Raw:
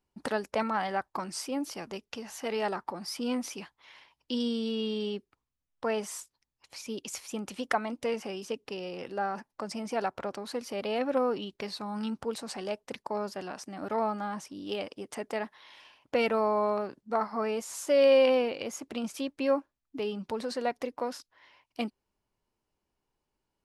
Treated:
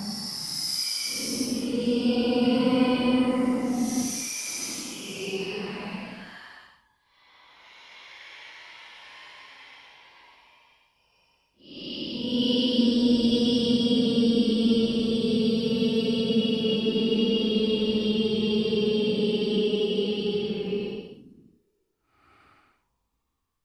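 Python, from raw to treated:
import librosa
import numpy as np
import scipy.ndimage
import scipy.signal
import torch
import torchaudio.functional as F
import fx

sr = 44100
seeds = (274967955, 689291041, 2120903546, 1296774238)

y = fx.local_reverse(x, sr, ms=44.0)
y = fx.paulstretch(y, sr, seeds[0], factor=9.6, window_s=0.1, from_s=3.02)
y = y * librosa.db_to_amplitude(8.0)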